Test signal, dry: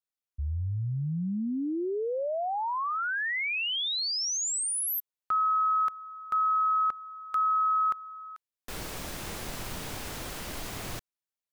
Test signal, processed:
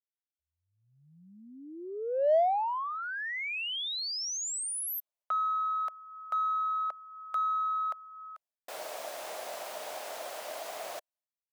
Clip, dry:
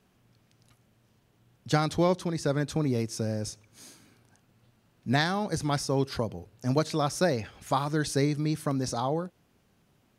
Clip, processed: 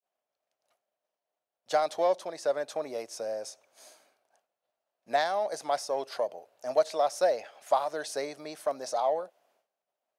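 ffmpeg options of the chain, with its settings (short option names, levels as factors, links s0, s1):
-filter_complex "[0:a]adynamicequalizer=threshold=0.01:dfrequency=1300:dqfactor=1.8:tfrequency=1300:tqfactor=1.8:attack=5:release=100:ratio=0.375:range=2.5:mode=cutabove:tftype=bell,highpass=f=630:t=q:w=4.9,agate=range=0.0224:threshold=0.002:ratio=3:release=348:detection=peak,asplit=2[s0][s1];[s1]asoftclip=type=tanh:threshold=0.0531,volume=0.266[s2];[s0][s2]amix=inputs=2:normalize=0,volume=0.473"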